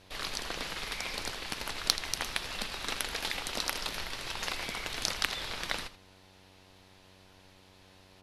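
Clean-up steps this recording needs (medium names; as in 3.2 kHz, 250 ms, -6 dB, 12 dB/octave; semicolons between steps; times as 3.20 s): clip repair -6 dBFS; de-hum 94.3 Hz, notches 11; inverse comb 81 ms -14.5 dB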